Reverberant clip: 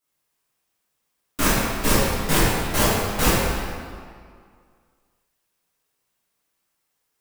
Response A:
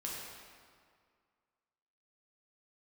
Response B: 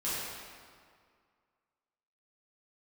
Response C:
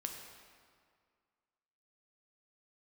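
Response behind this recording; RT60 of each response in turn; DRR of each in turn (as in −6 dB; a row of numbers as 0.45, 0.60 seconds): B; 2.0, 2.0, 2.0 seconds; −4.5, −11.5, 2.5 decibels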